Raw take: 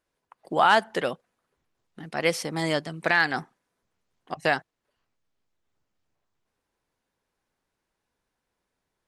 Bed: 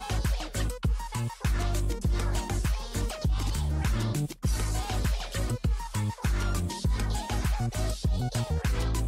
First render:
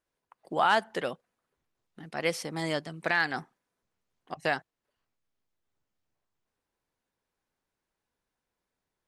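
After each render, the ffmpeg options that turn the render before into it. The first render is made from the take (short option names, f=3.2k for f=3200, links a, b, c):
-af "volume=-5dB"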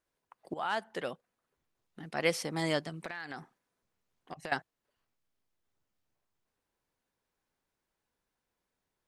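-filter_complex "[0:a]asettb=1/sr,asplit=3[a][b][c];[a]atrim=end=2.894[d];[b]atrim=start=2.89:end=4.52,asetpts=PTS-STARTPTS,afade=t=in:d=0.004:c=qsin,afade=t=out:st=1.626:d=0.004:c=qsin,acompressor=threshold=-37dB:ratio=8:attack=3.2:release=140:knee=1:detection=peak[e];[c]atrim=start=4.516[f];[d][e]acrossfade=d=0.004:c1=hsin:c2=qsin[g];[g][f]acrossfade=d=0.004:c1=qsin:c2=hsin,asplit=2[h][i];[h]atrim=end=0.54,asetpts=PTS-STARTPTS,afade=t=out:st=0.536:d=0.004:c=hsin:silence=0.199526[j];[i]atrim=start=0.54,asetpts=PTS-STARTPTS,afade=t=in:d=1.57:c=qsin:silence=0.199526[k];[j][k]concat=n=2:v=0:a=1"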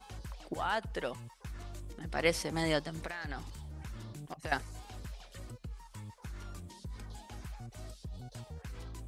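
-filter_complex "[1:a]volume=-17dB[a];[0:a][a]amix=inputs=2:normalize=0"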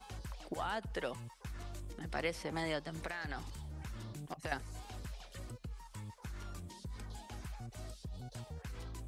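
-filter_complex "[0:a]acrossover=split=460|3400[a][b][c];[a]acompressor=threshold=-41dB:ratio=4[d];[b]acompressor=threshold=-37dB:ratio=4[e];[c]acompressor=threshold=-52dB:ratio=4[f];[d][e][f]amix=inputs=3:normalize=0"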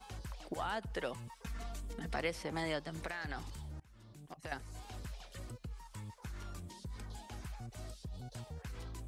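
-filter_complex "[0:a]asettb=1/sr,asplit=3[a][b][c];[a]atrim=end=1.274[d];[b]atrim=start=1.27:end=2.16,asetpts=PTS-STARTPTS,afade=t=in:d=0.004:c=qsin,afade=t=out:st=0.886:d=0.004:c=qsin,aecho=1:1:4.4:0.9,atrim=end_sample=39249[e];[c]atrim=start=2.156[f];[d][e]acrossfade=d=0.004:c1=hsin:c2=qsin[g];[g][f]acrossfade=d=0.004:c1=qsin:c2=hsin,asplit=2[h][i];[h]atrim=end=3.8,asetpts=PTS-STARTPTS,afade=t=out:st=3.796:d=0.004:c=hsin:silence=0.0630957[j];[i]atrim=start=3.8,asetpts=PTS-STARTPTS,afade=t=in:d=1.14:silence=0.0630957[k];[j][k]concat=n=2:v=0:a=1"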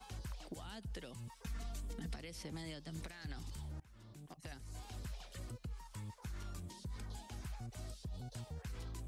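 -filter_complex "[0:a]alimiter=level_in=6dB:limit=-24dB:level=0:latency=1:release=156,volume=-6dB,acrossover=split=300|3000[a][b][c];[b]acompressor=threshold=-55dB:ratio=6[d];[a][d][c]amix=inputs=3:normalize=0"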